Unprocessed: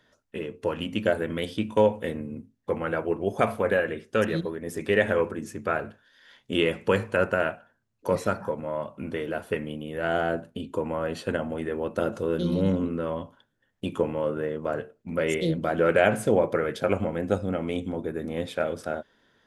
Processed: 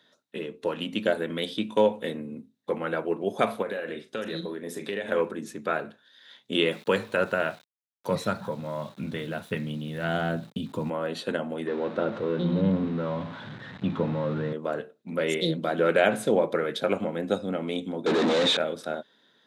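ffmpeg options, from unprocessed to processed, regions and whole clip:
ffmpeg -i in.wav -filter_complex "[0:a]asettb=1/sr,asplit=3[link_01][link_02][link_03];[link_01]atrim=end=3.624[link_04];[link_02]atrim=start=3.62:end=5.12,asetpts=PTS-STARTPTS,afade=type=in:duration=0.004:curve=qsin,afade=type=out:start_time=1.496:duration=0.004:curve=qsin,acompressor=threshold=-28dB:ratio=4:attack=3.2:release=140:knee=1:detection=peak,asplit=2[link_05][link_06];[link_06]adelay=40,volume=-10.5dB[link_07];[link_05][link_07]amix=inputs=2:normalize=0,atrim=end_sample=66150[link_08];[link_03]atrim=start=5.116[link_09];[link_04][link_08]acrossfade=duration=0.004:curve1=hsin:curve2=qsin[link_10];[link_10][link_09]acrossfade=duration=0.004:curve1=qsin:curve2=hsin,asettb=1/sr,asplit=3[link_11][link_12][link_13];[link_11]atrim=end=6.714[link_14];[link_12]atrim=start=6.71:end=10.9,asetpts=PTS-STARTPTS,afade=type=in:duration=0.004:curve=qsin,afade=type=out:start_time=4.186:duration=0.004:curve=qsin,asubboost=boost=11:cutoff=130,aeval=exprs='val(0)*gte(abs(val(0)),0.00422)':channel_layout=same[link_15];[link_13]atrim=start=10.896[link_16];[link_14][link_15]acrossfade=duration=0.004:curve1=hsin:curve2=qsin[link_17];[link_17][link_16]acrossfade=duration=0.004:curve1=qsin:curve2=hsin,asettb=1/sr,asplit=3[link_18][link_19][link_20];[link_18]atrim=end=11.674[link_21];[link_19]atrim=start=11.67:end=14.53,asetpts=PTS-STARTPTS,afade=type=in:duration=0.004:curve=qsin,afade=type=out:start_time=2.856:duration=0.004:curve=qsin,aeval=exprs='val(0)+0.5*0.0237*sgn(val(0))':channel_layout=same,asubboost=boost=12:cutoff=130,lowpass=2000[link_22];[link_20]atrim=start=14.526[link_23];[link_21][link_22]acrossfade=duration=0.004:curve1=hsin:curve2=qsin[link_24];[link_24][link_23]acrossfade=duration=0.004:curve1=qsin:curve2=hsin,asettb=1/sr,asplit=3[link_25][link_26][link_27];[link_25]atrim=end=18.064[link_28];[link_26]atrim=start=18.06:end=18.57,asetpts=PTS-STARTPTS,afade=type=in:duration=0.004:curve=qsin,afade=type=out:start_time=0.506:duration=0.004:curve=qsin,asplit=2[link_29][link_30];[link_30]highpass=frequency=720:poles=1,volume=42dB,asoftclip=type=tanh:threshold=-14.5dB[link_31];[link_29][link_31]amix=inputs=2:normalize=0,lowpass=frequency=1300:poles=1,volume=-6dB,lowpass=frequency=7300:width_type=q:width=2[link_32];[link_27]atrim=start=18.566[link_33];[link_28][link_32]acrossfade=duration=0.004:curve1=hsin:curve2=qsin[link_34];[link_34][link_33]acrossfade=duration=0.004:curve1=qsin:curve2=hsin,highpass=frequency=150:width=0.5412,highpass=frequency=150:width=1.3066,equalizer=frequency=3800:width_type=o:width=0.29:gain=13,volume=-1dB" out.wav

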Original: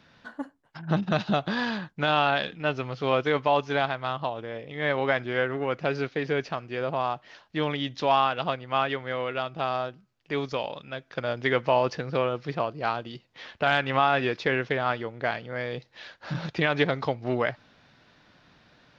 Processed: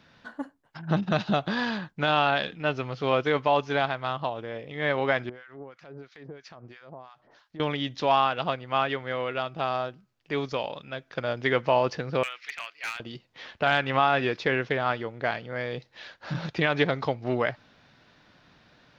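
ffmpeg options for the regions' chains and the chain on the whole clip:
ffmpeg -i in.wav -filter_complex "[0:a]asettb=1/sr,asplit=3[link_01][link_02][link_03];[link_01]atrim=end=5.294[link_04];[link_02]atrim=start=5.29:end=7.6,asetpts=PTS-STARTPTS,afade=type=in:duration=0.004:curve=qsin,afade=type=out:start_time=2.306:duration=0.004:curve=qsin,acompressor=threshold=-36dB:ratio=8:attack=3.2:release=140:knee=1:detection=peak,equalizer=frequency=2700:width_type=o:width=0.48:gain=-5.5,acrossover=split=1100[link_05][link_06];[link_05]aeval=exprs='val(0)*(1-1/2+1/2*cos(2*PI*3*n/s))':channel_layout=same[link_07];[link_06]aeval=exprs='val(0)*(1-1/2-1/2*cos(2*PI*3*n/s))':channel_layout=same[link_08];[link_07][link_08]amix=inputs=2:normalize=0[link_09];[link_03]atrim=start=7.596[link_10];[link_04][link_09]acrossfade=duration=0.004:curve1=hsin:curve2=qsin[link_11];[link_11][link_10]acrossfade=duration=0.004:curve1=qsin:curve2=hsin,asettb=1/sr,asplit=3[link_12][link_13][link_14];[link_12]atrim=end=12.234[link_15];[link_13]atrim=start=12.23:end=13,asetpts=PTS-STARTPTS,afade=type=in:duration=0.004:curve=qsin,afade=type=out:start_time=0.766:duration=0.004:curve=qsin,highpass=frequency=2100:width_type=q:width=3.3,asoftclip=type=hard:threshold=-26dB[link_16];[link_14]atrim=start=12.996[link_17];[link_15][link_16]acrossfade=duration=0.004:curve1=hsin:curve2=qsin[link_18];[link_18][link_17]acrossfade=duration=0.004:curve1=qsin:curve2=hsin" out.wav

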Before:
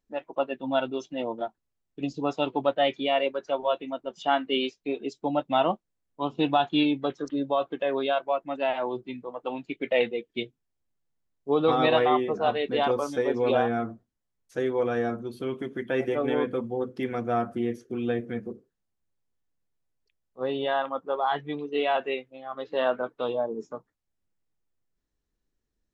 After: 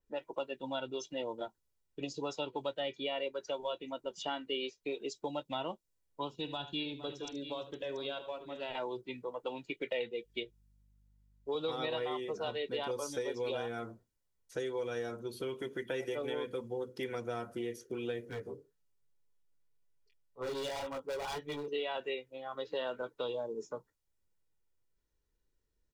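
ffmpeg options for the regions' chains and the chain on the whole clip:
ffmpeg -i in.wav -filter_complex "[0:a]asettb=1/sr,asplit=3[link_01][link_02][link_03];[link_01]atrim=end=6.354[link_04];[link_02]atrim=start=6.35:end=8.75,asetpts=PTS-STARTPTS,afade=type=in:duration=0.004:curve=qsin,afade=type=out:start_time=2.396:duration=0.004:curve=qsin,equalizer=frequency=850:width=0.34:gain=-12,aecho=1:1:46|76|461|683:0.119|0.188|0.133|0.168,atrim=end_sample=105840[link_05];[link_03]atrim=start=8.746[link_06];[link_04][link_05]acrossfade=duration=0.004:curve1=hsin:curve2=qsin[link_07];[link_07][link_06]acrossfade=duration=0.004:curve1=qsin:curve2=hsin,asettb=1/sr,asplit=3[link_08][link_09][link_10];[link_08]atrim=end=10.244[link_11];[link_09]atrim=start=10.24:end=11.55,asetpts=PTS-STARTPTS,afade=type=in:duration=0.004:curve=qsin,afade=type=out:start_time=1.306:duration=0.004:curve=qsin,highpass=frequency=330:poles=1,aeval=exprs='val(0)+0.000501*(sin(2*PI*50*n/s)+sin(2*PI*2*50*n/s)/2+sin(2*PI*3*50*n/s)/3+sin(2*PI*4*50*n/s)/4+sin(2*PI*5*50*n/s)/5)':channel_layout=same[link_12];[link_10]atrim=start=11.546[link_13];[link_11][link_12]acrossfade=duration=0.004:curve1=hsin:curve2=qsin[link_14];[link_14][link_13]acrossfade=duration=0.004:curve1=qsin:curve2=hsin,asettb=1/sr,asplit=3[link_15][link_16][link_17];[link_15]atrim=end=18.294[link_18];[link_16]atrim=start=18.29:end=21.68,asetpts=PTS-STARTPTS,afade=type=in:duration=0.004:curve=qsin,afade=type=out:start_time=3.386:duration=0.004:curve=qsin,aecho=1:1:7:0.87,atrim=end_sample=149499,flanger=delay=17.5:depth=5.2:speed=1.9,volume=30dB,asoftclip=hard,volume=-30dB[link_19];[link_17]atrim=start=21.676[link_20];[link_18][link_19]acrossfade=duration=0.004:curve1=hsin:curve2=qsin[link_21];[link_21][link_20]acrossfade=duration=0.004:curve1=qsin:curve2=hsin,aecho=1:1:2.1:0.41,acrossover=split=360|2900[link_22][link_23][link_24];[link_22]acompressor=threshold=-43dB:ratio=4[link_25];[link_23]acompressor=threshold=-37dB:ratio=4[link_26];[link_24]acompressor=threshold=-46dB:ratio=4[link_27];[link_25][link_26][link_27]amix=inputs=3:normalize=0,adynamicequalizer=threshold=0.00158:dfrequency=4100:dqfactor=0.7:tfrequency=4100:tqfactor=0.7:attack=5:release=100:ratio=0.375:range=3.5:mode=boostabove:tftype=highshelf,volume=-2dB" out.wav

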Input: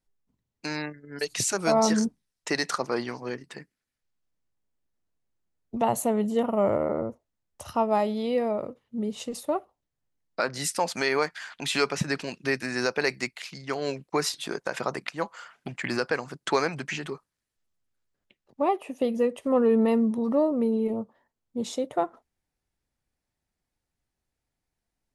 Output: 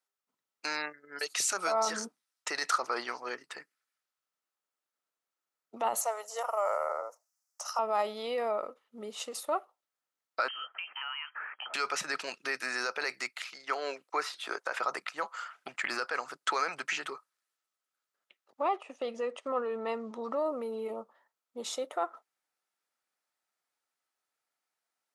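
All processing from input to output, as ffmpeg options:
ffmpeg -i in.wav -filter_complex "[0:a]asettb=1/sr,asplit=3[link_01][link_02][link_03];[link_01]atrim=end=6.014[link_04];[link_02]atrim=start=6.01:end=7.79,asetpts=PTS-STARTPTS,afade=type=in:duration=0.004:curve=qsin,afade=type=out:start_time=1.776:duration=0.004:curve=qsin,highpass=frequency=570:width=0.5412,highpass=frequency=570:width=1.3066,acrossover=split=5900[link_05][link_06];[link_06]acompressor=threshold=-60dB:ratio=4:attack=1:release=60[link_07];[link_05][link_07]amix=inputs=2:normalize=0,highshelf=frequency=4400:width_type=q:width=3:gain=9[link_08];[link_03]atrim=start=7.786[link_09];[link_04][link_08]acrossfade=duration=0.004:curve1=hsin:curve2=qsin[link_10];[link_10][link_09]acrossfade=duration=0.004:curve1=qsin:curve2=hsin,asettb=1/sr,asplit=3[link_11][link_12][link_13];[link_11]atrim=end=10.484[link_14];[link_12]atrim=start=10.48:end=11.74,asetpts=PTS-STARTPTS,afade=type=in:duration=0.004:curve=qsin,afade=type=out:start_time=1.256:duration=0.004:curve=qsin,acompressor=threshold=-36dB:ratio=6:attack=3.2:release=140:knee=1:detection=peak,lowpass=frequency=2800:width_type=q:width=0.5098,lowpass=frequency=2800:width_type=q:width=0.6013,lowpass=frequency=2800:width_type=q:width=0.9,lowpass=frequency=2800:width_type=q:width=2.563,afreqshift=-3300[link_15];[link_13]atrim=start=11.736[link_16];[link_14][link_15]acrossfade=duration=0.004:curve1=hsin:curve2=qsin[link_17];[link_17][link_16]acrossfade=duration=0.004:curve1=qsin:curve2=hsin,asettb=1/sr,asplit=3[link_18][link_19][link_20];[link_18]atrim=end=13.434[link_21];[link_19]atrim=start=13.43:end=14.82,asetpts=PTS-STARTPTS,afade=type=in:duration=0.004:curve=qsin,afade=type=out:start_time=1.386:duration=0.004:curve=qsin,highpass=240,acrossover=split=3200[link_22][link_23];[link_23]acompressor=threshold=-46dB:ratio=4:attack=1:release=60[link_24];[link_22][link_24]amix=inputs=2:normalize=0[link_25];[link_20]atrim=start=14.816[link_26];[link_21][link_25]acrossfade=duration=0.004:curve1=hsin:curve2=qsin[link_27];[link_27][link_26]acrossfade=duration=0.004:curve1=qsin:curve2=hsin,asettb=1/sr,asplit=3[link_28][link_29][link_30];[link_28]atrim=end=18.624[link_31];[link_29]atrim=start=18.62:end=20.36,asetpts=PTS-STARTPTS,afade=type=in:duration=0.004:curve=qsin,afade=type=out:start_time=1.736:duration=0.004:curve=qsin,agate=range=-7dB:threshold=-44dB:ratio=16:release=100:detection=peak,lowpass=frequency=7400:width=0.5412,lowpass=frequency=7400:width=1.3066[link_32];[link_30]atrim=start=20.356[link_33];[link_31][link_32]acrossfade=duration=0.004:curve1=hsin:curve2=qsin[link_34];[link_34][link_33]acrossfade=duration=0.004:curve1=qsin:curve2=hsin,alimiter=limit=-19.5dB:level=0:latency=1:release=18,highpass=620,equalizer=frequency=1300:width_type=o:width=0.22:gain=9.5" out.wav

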